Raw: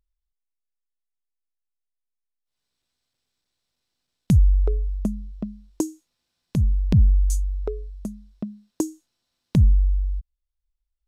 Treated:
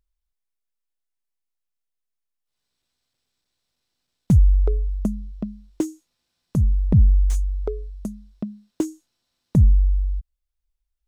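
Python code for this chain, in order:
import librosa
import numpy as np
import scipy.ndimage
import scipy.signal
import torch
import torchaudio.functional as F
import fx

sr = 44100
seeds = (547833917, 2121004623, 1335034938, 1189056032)

y = fx.slew_limit(x, sr, full_power_hz=84.0)
y = y * 10.0 ** (1.5 / 20.0)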